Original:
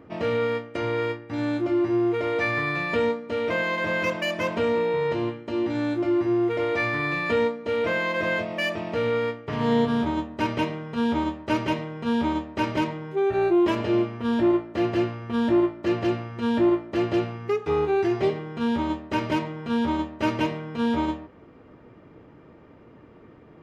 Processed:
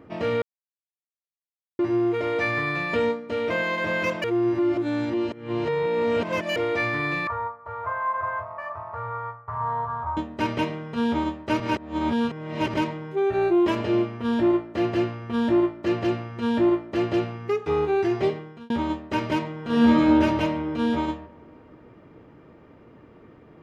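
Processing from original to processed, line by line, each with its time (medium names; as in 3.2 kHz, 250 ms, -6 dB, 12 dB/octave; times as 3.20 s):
0.42–1.79 s: mute
4.24–6.56 s: reverse
7.27–10.17 s: FFT filter 110 Hz 0 dB, 180 Hz -26 dB, 300 Hz -29 dB, 1.1 kHz +9 dB, 2.8 kHz -28 dB
11.60–12.74 s: reverse
18.26–18.70 s: fade out
19.60–20.05 s: reverb throw, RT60 2.5 s, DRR -7 dB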